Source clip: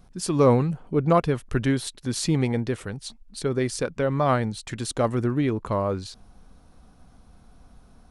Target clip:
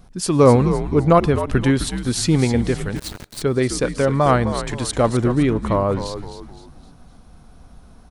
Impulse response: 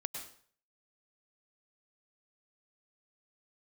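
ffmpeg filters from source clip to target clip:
-filter_complex "[0:a]asplit=5[a][b][c][d][e];[b]adelay=258,afreqshift=-81,volume=-10dB[f];[c]adelay=516,afreqshift=-162,volume=-17.7dB[g];[d]adelay=774,afreqshift=-243,volume=-25.5dB[h];[e]adelay=1032,afreqshift=-324,volume=-33.2dB[i];[a][f][g][h][i]amix=inputs=5:normalize=0,asettb=1/sr,asplit=3[j][k][l];[j]atrim=end=2.964[m];[k]atrim=start=2.96:end=3.42,asetpts=PTS-STARTPTS,afade=t=in:d=0.004:c=qsin,afade=t=out:st=0.456:d=0.004:c=qsin,aeval=exprs='val(0)*gte(abs(val(0)),0.0168)':c=same[n];[l]atrim=start=3.416[o];[m][n]acrossfade=d=0.004:c1=hsin:c2=qsin[p];[p][o]acrossfade=d=0.004:c1=qsin:c2=hsin,asplit=2[q][r];[1:a]atrim=start_sample=2205,afade=t=out:st=0.24:d=0.01,atrim=end_sample=11025[s];[r][s]afir=irnorm=-1:irlink=0,volume=-19.5dB[t];[q][t]amix=inputs=2:normalize=0,volume=5dB"

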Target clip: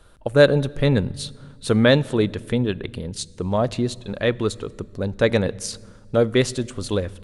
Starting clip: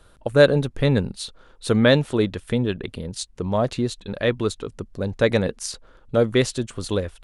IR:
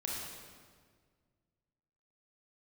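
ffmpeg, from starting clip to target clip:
-filter_complex "[0:a]asplit=2[a][b];[1:a]atrim=start_sample=2205,lowshelf=f=200:g=10.5[c];[b][c]afir=irnorm=-1:irlink=0,volume=-23dB[d];[a][d]amix=inputs=2:normalize=0"

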